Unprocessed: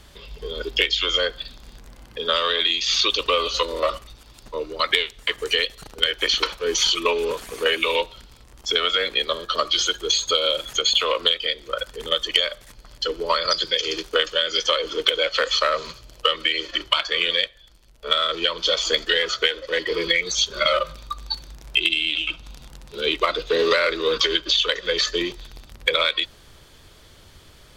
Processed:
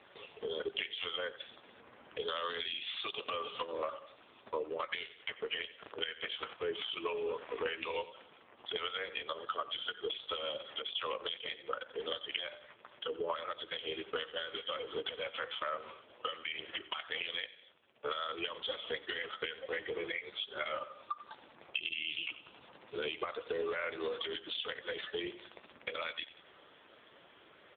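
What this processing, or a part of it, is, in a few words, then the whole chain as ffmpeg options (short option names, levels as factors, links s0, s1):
voicemail: -filter_complex "[0:a]asplit=3[s0][s1][s2];[s0]afade=t=out:st=14.15:d=0.02[s3];[s1]adynamicequalizer=threshold=0.01:dfrequency=210:dqfactor=1.2:tfrequency=210:tqfactor=1.2:attack=5:release=100:ratio=0.375:range=1.5:mode=boostabove:tftype=bell,afade=t=in:st=14.15:d=0.02,afade=t=out:st=14.7:d=0.02[s4];[s2]afade=t=in:st=14.7:d=0.02[s5];[s3][s4][s5]amix=inputs=3:normalize=0,highpass=330,lowpass=3100,aecho=1:1:89|178|267:0.126|0.0378|0.0113,acompressor=threshold=0.0251:ratio=8" -ar 8000 -c:a libopencore_amrnb -b:a 5900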